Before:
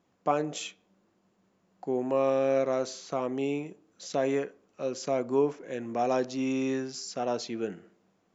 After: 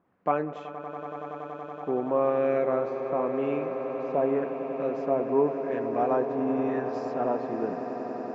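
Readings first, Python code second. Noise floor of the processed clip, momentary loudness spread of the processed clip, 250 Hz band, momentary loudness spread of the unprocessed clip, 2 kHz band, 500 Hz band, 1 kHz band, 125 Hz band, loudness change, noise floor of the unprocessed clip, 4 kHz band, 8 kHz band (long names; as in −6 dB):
−41 dBFS, 12 LU, +1.5 dB, 12 LU, 0.0 dB, +3.0 dB, +4.0 dB, +1.0 dB, +1.5 dB, −71 dBFS, below −15 dB, can't be measured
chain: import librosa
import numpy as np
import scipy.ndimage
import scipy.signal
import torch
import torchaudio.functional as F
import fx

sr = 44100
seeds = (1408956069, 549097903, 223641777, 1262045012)

y = fx.filter_lfo_lowpass(x, sr, shape='sine', hz=0.9, low_hz=950.0, high_hz=1900.0, q=1.4)
y = fx.echo_swell(y, sr, ms=94, loudest=8, wet_db=-14.0)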